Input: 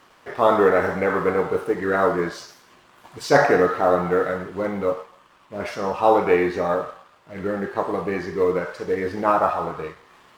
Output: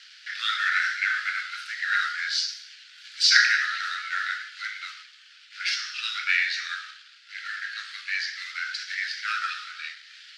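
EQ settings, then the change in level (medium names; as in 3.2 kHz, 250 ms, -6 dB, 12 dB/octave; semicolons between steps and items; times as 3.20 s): steep high-pass 1.4 kHz 96 dB/octave; resonant low-pass 4.6 kHz, resonance Q 2.6; treble shelf 2.2 kHz +10 dB; 0.0 dB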